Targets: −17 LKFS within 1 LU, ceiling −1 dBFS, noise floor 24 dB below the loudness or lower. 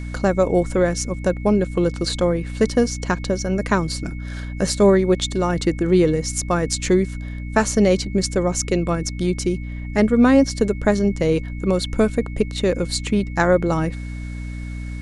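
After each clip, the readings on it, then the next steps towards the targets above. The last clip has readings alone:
mains hum 60 Hz; hum harmonics up to 300 Hz; level of the hum −27 dBFS; interfering tone 2,200 Hz; level of the tone −42 dBFS; integrated loudness −20.0 LKFS; sample peak −3.5 dBFS; target loudness −17.0 LKFS
→ hum removal 60 Hz, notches 5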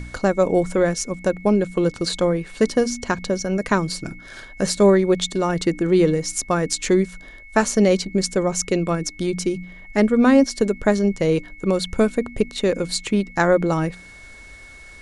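mains hum none found; interfering tone 2,200 Hz; level of the tone −42 dBFS
→ notch filter 2,200 Hz, Q 30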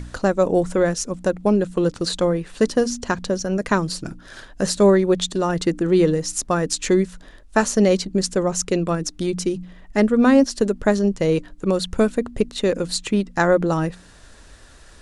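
interfering tone none found; integrated loudness −20.5 LKFS; sample peak −3.5 dBFS; target loudness −17.0 LKFS
→ level +3.5 dB
brickwall limiter −1 dBFS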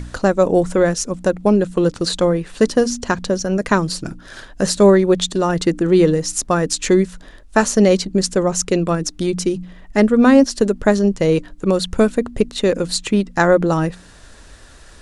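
integrated loudness −17.0 LKFS; sample peak −1.0 dBFS; background noise floor −43 dBFS

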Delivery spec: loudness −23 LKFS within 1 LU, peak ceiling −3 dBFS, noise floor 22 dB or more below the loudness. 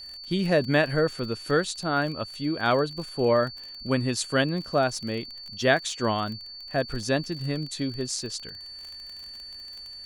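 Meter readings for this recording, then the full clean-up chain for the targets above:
crackle rate 36 per second; interfering tone 4,500 Hz; level of the tone −39 dBFS; integrated loudness −26.5 LKFS; sample peak −8.0 dBFS; target loudness −23.0 LKFS
→ click removal
notch filter 4,500 Hz, Q 30
level +3.5 dB

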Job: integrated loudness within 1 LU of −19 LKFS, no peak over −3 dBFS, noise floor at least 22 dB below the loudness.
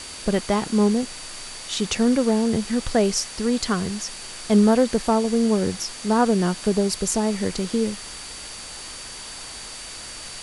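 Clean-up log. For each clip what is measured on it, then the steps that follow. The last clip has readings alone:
interfering tone 4,600 Hz; level of the tone −41 dBFS; background noise floor −37 dBFS; target noise floor −44 dBFS; integrated loudness −22.0 LKFS; sample peak −6.0 dBFS; target loudness −19.0 LKFS
→ notch filter 4,600 Hz, Q 30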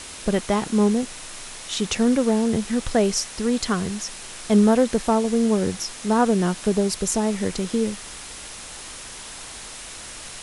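interfering tone none found; background noise floor −38 dBFS; target noise floor −44 dBFS
→ broadband denoise 6 dB, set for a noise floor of −38 dBFS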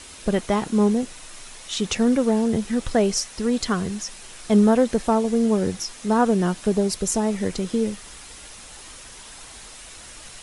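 background noise floor −42 dBFS; target noise floor −44 dBFS
→ broadband denoise 6 dB, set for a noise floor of −42 dBFS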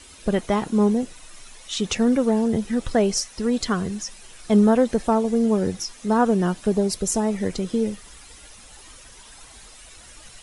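background noise floor −46 dBFS; integrated loudness −22.0 LKFS; sample peak −6.5 dBFS; target loudness −19.0 LKFS
→ level +3 dB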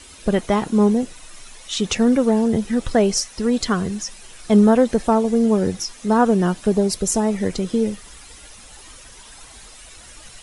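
integrated loudness −19.0 LKFS; sample peak −3.5 dBFS; background noise floor −43 dBFS

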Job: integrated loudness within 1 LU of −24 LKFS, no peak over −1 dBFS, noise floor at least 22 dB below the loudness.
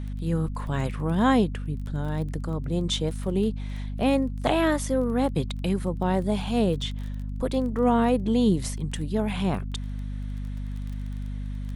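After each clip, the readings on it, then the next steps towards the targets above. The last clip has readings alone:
crackle rate 19 per second; mains hum 50 Hz; hum harmonics up to 250 Hz; level of the hum −29 dBFS; integrated loudness −26.5 LKFS; sample peak −7.5 dBFS; target loudness −24.0 LKFS
→ click removal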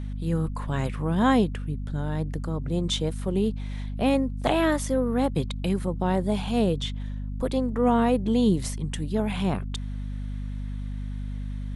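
crackle rate 0 per second; mains hum 50 Hz; hum harmonics up to 250 Hz; level of the hum −29 dBFS
→ hum removal 50 Hz, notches 5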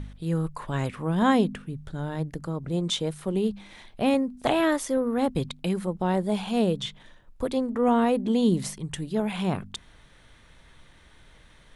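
mains hum none found; integrated loudness −26.5 LKFS; sample peak −8.0 dBFS; target loudness −24.0 LKFS
→ level +2.5 dB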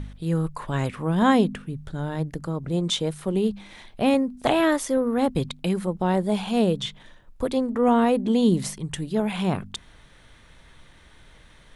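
integrated loudness −24.0 LKFS; sample peak −5.5 dBFS; background noise floor −52 dBFS

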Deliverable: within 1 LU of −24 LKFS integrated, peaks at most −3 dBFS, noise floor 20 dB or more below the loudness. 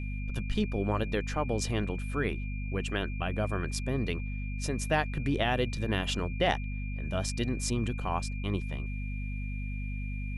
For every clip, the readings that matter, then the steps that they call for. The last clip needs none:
mains hum 50 Hz; hum harmonics up to 250 Hz; level of the hum −32 dBFS; interfering tone 2,400 Hz; level of the tone −45 dBFS; integrated loudness −32.5 LKFS; sample peak −13.5 dBFS; target loudness −24.0 LKFS
→ mains-hum notches 50/100/150/200/250 Hz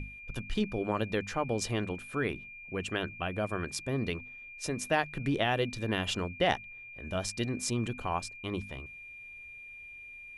mains hum none found; interfering tone 2,400 Hz; level of the tone −45 dBFS
→ notch filter 2,400 Hz, Q 30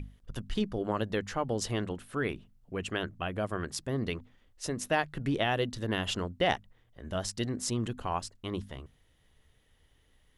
interfering tone none found; integrated loudness −33.5 LKFS; sample peak −14.0 dBFS; target loudness −24.0 LKFS
→ level +9.5 dB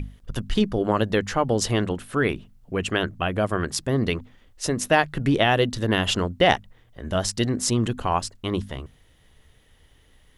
integrated loudness −24.0 LKFS; sample peak −4.5 dBFS; background noise floor −58 dBFS

